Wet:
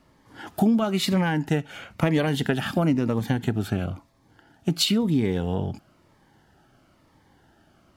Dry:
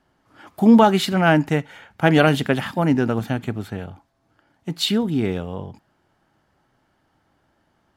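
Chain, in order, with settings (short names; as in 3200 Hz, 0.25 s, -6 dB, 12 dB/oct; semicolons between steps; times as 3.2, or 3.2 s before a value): compressor 6:1, threshold -26 dBFS, peak gain reduction 16.5 dB; cascading phaser falling 1 Hz; gain +7.5 dB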